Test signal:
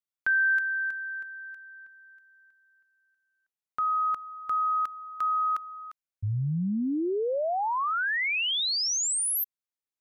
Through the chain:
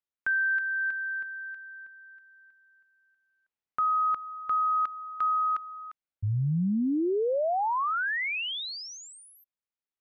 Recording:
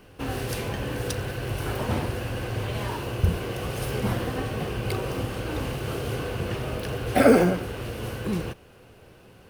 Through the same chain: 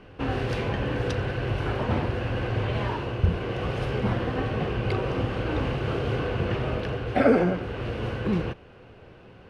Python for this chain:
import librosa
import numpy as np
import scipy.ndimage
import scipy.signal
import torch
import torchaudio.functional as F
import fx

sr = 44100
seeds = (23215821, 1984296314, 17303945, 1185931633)

y = fx.rider(x, sr, range_db=3, speed_s=0.5)
y = scipy.signal.sosfilt(scipy.signal.butter(2, 3100.0, 'lowpass', fs=sr, output='sos'), y)